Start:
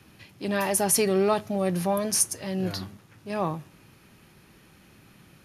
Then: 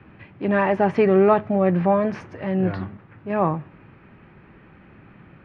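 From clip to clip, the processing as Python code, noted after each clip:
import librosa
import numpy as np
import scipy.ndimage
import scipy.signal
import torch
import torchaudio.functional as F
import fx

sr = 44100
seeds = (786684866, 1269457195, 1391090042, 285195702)

y = scipy.signal.sosfilt(scipy.signal.butter(4, 2200.0, 'lowpass', fs=sr, output='sos'), x)
y = F.gain(torch.from_numpy(y), 7.0).numpy()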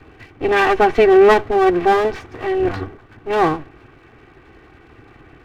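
y = fx.lower_of_two(x, sr, delay_ms=2.6)
y = fx.dynamic_eq(y, sr, hz=3300.0, q=0.8, threshold_db=-40.0, ratio=4.0, max_db=3)
y = F.gain(torch.from_numpy(y), 5.0).numpy()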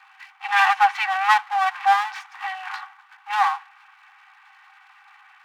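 y = fx.brickwall_highpass(x, sr, low_hz=750.0)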